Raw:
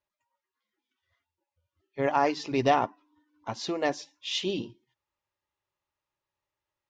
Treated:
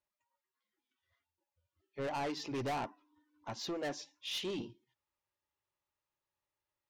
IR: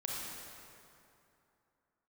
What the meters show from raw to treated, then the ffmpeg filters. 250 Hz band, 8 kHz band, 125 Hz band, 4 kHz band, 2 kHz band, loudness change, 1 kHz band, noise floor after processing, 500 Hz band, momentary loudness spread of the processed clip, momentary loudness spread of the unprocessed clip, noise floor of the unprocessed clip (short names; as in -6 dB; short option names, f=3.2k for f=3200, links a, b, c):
-9.5 dB, n/a, -8.0 dB, -7.5 dB, -10.5 dB, -11.0 dB, -13.0 dB, under -85 dBFS, -11.5 dB, 11 LU, 15 LU, under -85 dBFS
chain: -af "asoftclip=type=tanh:threshold=-29dB,volume=-4.5dB"